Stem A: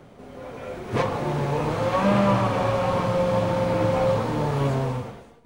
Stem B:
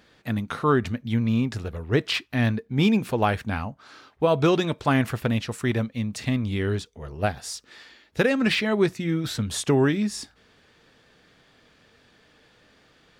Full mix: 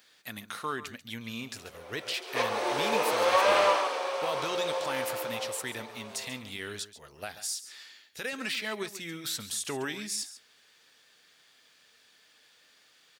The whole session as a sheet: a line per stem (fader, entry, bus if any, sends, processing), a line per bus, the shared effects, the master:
0:02.17 −11 dB → 0:02.67 −1.5 dB → 0:03.66 −1.5 dB → 0:03.99 −9.5 dB → 0:04.99 −9.5 dB → 0:05.73 −20 dB, 1.40 s, no send, no echo send, Butterworth high-pass 370 Hz 36 dB per octave; parametric band 5,600 Hz +9.5 dB 2.8 octaves; notch filter 7,000 Hz
−8.0 dB, 0.00 s, no send, echo send −14 dB, spectral tilt +4.5 dB per octave; brickwall limiter −15.5 dBFS, peak gain reduction 11 dB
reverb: not used
echo: single-tap delay 138 ms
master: no processing

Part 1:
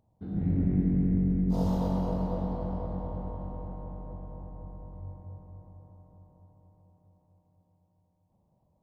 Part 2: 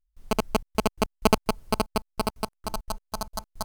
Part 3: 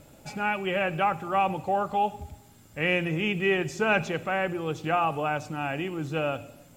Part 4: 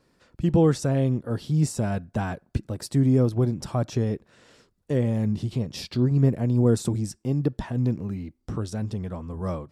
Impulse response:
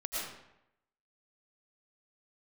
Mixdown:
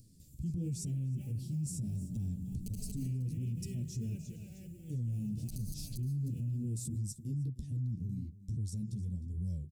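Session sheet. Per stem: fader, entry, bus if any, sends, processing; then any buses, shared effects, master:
−11.0 dB, 1.25 s, no send, no echo send, high-pass filter 110 Hz
−4.0 dB, 2.35 s, muted 0:03.05–0:05.41, send −6.5 dB, echo send −12 dB, no processing
−11.0 dB, 0.20 s, send −12.5 dB, echo send −5.5 dB, floating-point word with a short mantissa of 4 bits
+0.5 dB, 0.00 s, no send, echo send −17.5 dB, flanger 1.4 Hz, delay 8.2 ms, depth 7.6 ms, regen −3%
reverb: on, RT60 0.85 s, pre-delay 70 ms
echo: single-tap delay 308 ms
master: upward compression, threshold −43 dBFS; Chebyshev band-stop filter 140–8,000 Hz, order 2; brickwall limiter −30.5 dBFS, peak gain reduction 14.5 dB

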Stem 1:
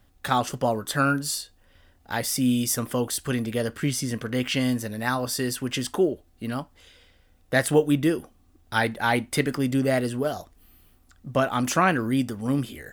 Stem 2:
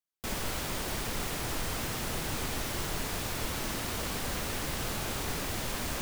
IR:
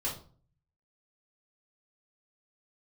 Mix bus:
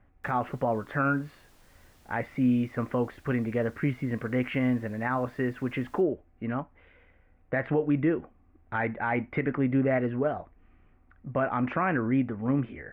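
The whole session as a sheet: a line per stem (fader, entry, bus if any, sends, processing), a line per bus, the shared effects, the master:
−0.5 dB, 0.00 s, no send, Chebyshev low-pass filter 2,300 Hz, order 4
−15.0 dB, 0.00 s, no send, automatic ducking −12 dB, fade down 0.40 s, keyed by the first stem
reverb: not used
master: brickwall limiter −17 dBFS, peak gain reduction 9 dB

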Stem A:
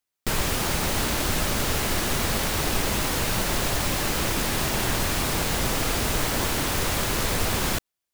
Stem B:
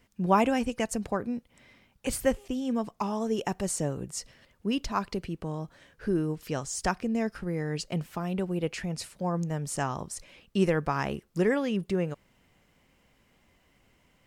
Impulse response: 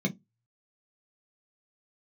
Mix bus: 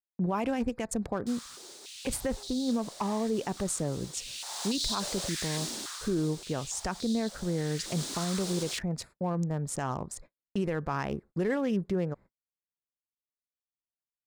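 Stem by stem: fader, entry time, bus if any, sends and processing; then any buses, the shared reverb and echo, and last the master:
0:04.11 −22.5 dB → 0:04.66 −10.5 dB → 0:05.67 −10.5 dB → 0:06.32 −22 dB → 0:07.56 −22 dB → 0:08.02 −12 dB, 1.00 s, no send, flat-topped bell 5,700 Hz +13.5 dB; high-pass on a step sequencer 3.5 Hz 260–3,900 Hz; automatic ducking −7 dB, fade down 1.70 s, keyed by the second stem
+1.0 dB, 0.00 s, no send, adaptive Wiener filter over 15 samples; noise gate −54 dBFS, range −17 dB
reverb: not used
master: noise gate −48 dBFS, range −32 dB; brickwall limiter −21 dBFS, peak gain reduction 12 dB

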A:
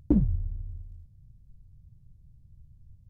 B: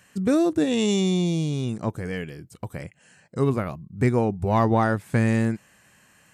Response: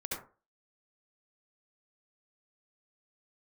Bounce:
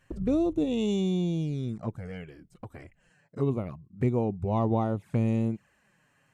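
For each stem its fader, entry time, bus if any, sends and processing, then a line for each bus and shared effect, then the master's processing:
−13.0 dB, 0.00 s, no send, no processing
−4.5 dB, 0.00 s, no send, high-shelf EQ 3,800 Hz −11.5 dB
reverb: not used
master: flanger swept by the level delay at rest 7.9 ms, full sweep at −24.5 dBFS

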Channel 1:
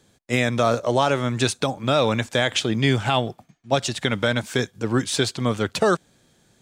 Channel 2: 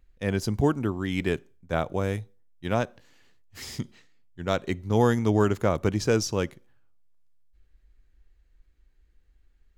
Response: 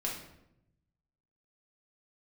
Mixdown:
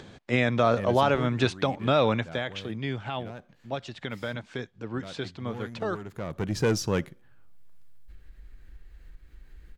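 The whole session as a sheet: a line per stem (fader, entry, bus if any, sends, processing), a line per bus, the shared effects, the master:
0:02.10 −2.5 dB → 0:02.50 −12 dB, 0.00 s, no send, low-pass filter 3,400 Hz 12 dB per octave
+1.0 dB, 0.55 s, no send, graphic EQ with 15 bands 160 Hz +5 dB, 1,600 Hz +3 dB, 6,300 Hz −4 dB; soft clipping −17.5 dBFS, distortion −13 dB; automatic ducking −17 dB, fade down 1.80 s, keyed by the first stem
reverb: not used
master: upward compression, threshold −34 dBFS

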